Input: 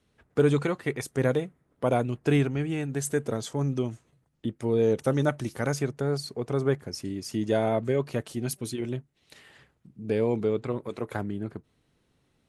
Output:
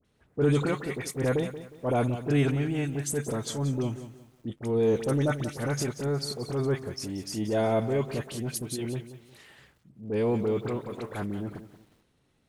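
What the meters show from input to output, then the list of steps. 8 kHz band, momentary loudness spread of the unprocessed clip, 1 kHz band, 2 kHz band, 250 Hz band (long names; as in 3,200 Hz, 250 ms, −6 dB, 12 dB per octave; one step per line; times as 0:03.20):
+2.0 dB, 10 LU, −1.0 dB, −1.5 dB, −0.5 dB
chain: transient designer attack −7 dB, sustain +4 dB
all-pass dispersion highs, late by 49 ms, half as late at 1,600 Hz
feedback echo at a low word length 180 ms, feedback 35%, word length 9 bits, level −12.5 dB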